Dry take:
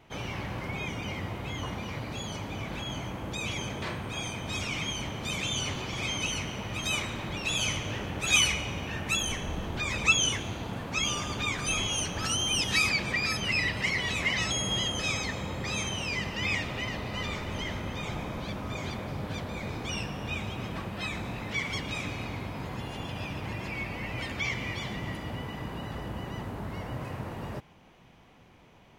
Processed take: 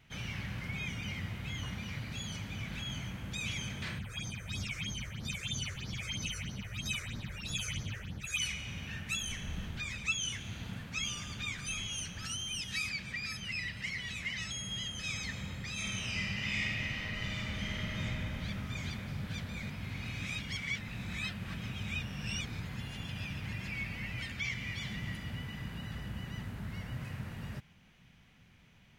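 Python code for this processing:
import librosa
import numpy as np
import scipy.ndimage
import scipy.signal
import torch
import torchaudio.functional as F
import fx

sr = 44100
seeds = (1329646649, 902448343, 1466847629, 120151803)

y = fx.phaser_stages(x, sr, stages=6, low_hz=210.0, high_hz=2800.0, hz=3.1, feedback_pct=25, at=(3.98, 8.4), fade=0.02)
y = fx.reverb_throw(y, sr, start_s=15.73, length_s=2.25, rt60_s=2.7, drr_db=-7.5)
y = fx.edit(y, sr, fx.reverse_span(start_s=19.7, length_s=2.9), tone=tone)
y = fx.band_shelf(y, sr, hz=570.0, db=-11.5, octaves=2.3)
y = fx.rider(y, sr, range_db=4, speed_s=0.5)
y = F.gain(torch.from_numpy(y), -6.5).numpy()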